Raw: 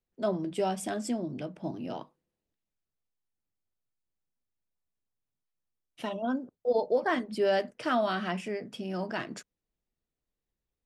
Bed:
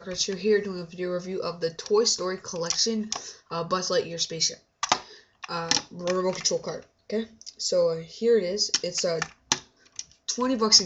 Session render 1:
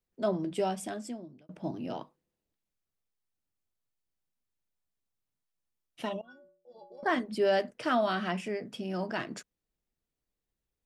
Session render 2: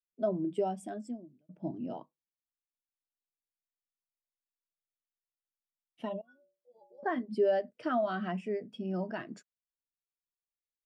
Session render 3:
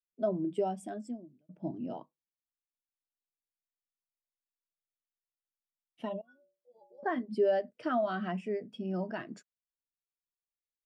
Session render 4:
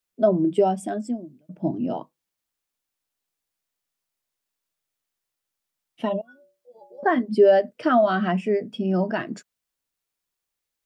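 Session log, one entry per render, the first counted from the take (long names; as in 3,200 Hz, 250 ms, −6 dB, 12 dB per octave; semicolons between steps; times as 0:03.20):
0:00.55–0:01.49: fade out linear; 0:06.21–0:07.03: stiff-string resonator 170 Hz, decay 0.61 s, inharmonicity 0.03
downward compressor 3 to 1, threshold −29 dBFS, peak gain reduction 5.5 dB; every bin expanded away from the loudest bin 1.5 to 1
no processing that can be heard
level +12 dB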